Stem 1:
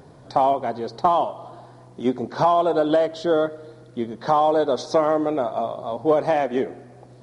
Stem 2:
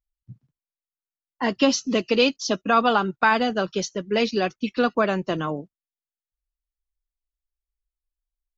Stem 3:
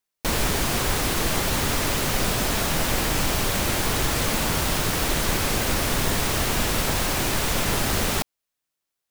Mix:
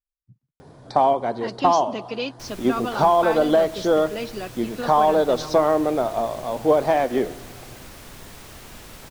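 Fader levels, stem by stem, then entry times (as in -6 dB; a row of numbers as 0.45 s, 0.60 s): +1.0 dB, -9.5 dB, -18.5 dB; 0.60 s, 0.00 s, 2.15 s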